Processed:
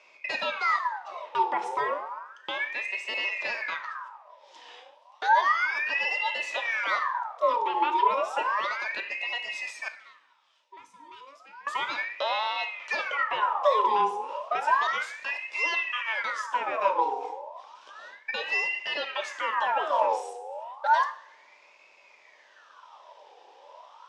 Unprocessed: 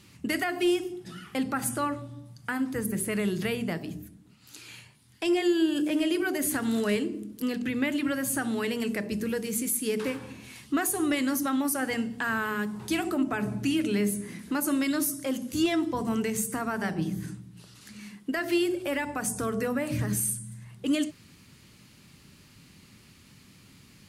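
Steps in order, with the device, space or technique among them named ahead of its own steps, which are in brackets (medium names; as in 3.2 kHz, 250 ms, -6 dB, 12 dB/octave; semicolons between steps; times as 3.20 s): voice changer toy (ring modulator with a swept carrier 1.5 kHz, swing 60%, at 0.32 Hz; cabinet simulation 520–4900 Hz, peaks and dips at 560 Hz +9 dB, 970 Hz +9 dB, 1.5 kHz -3 dB, 2.1 kHz -4 dB, 4.3 kHz -7 dB); 9.88–11.67 s: amplifier tone stack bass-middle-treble 6-0-2; two-slope reverb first 0.52 s, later 2.2 s, from -26 dB, DRR 9.5 dB; trim +2.5 dB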